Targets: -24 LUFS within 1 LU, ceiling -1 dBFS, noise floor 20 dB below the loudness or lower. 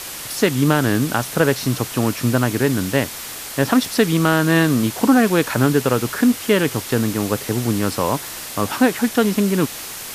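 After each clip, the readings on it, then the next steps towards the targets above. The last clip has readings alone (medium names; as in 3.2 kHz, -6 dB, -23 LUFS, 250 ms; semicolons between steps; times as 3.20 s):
noise floor -32 dBFS; noise floor target -39 dBFS; loudness -18.5 LUFS; peak level -2.5 dBFS; loudness target -24.0 LUFS
-> noise reduction 7 dB, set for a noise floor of -32 dBFS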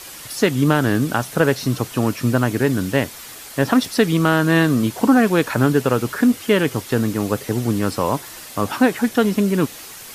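noise floor -37 dBFS; noise floor target -39 dBFS
-> noise reduction 6 dB, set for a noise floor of -37 dBFS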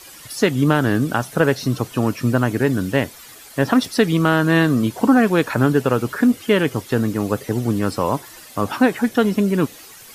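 noise floor -42 dBFS; loudness -19.0 LUFS; peak level -2.5 dBFS; loudness target -24.0 LUFS
-> trim -5 dB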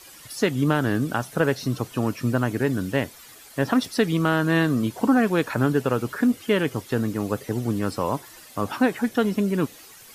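loudness -24.0 LUFS; peak level -7.5 dBFS; noise floor -47 dBFS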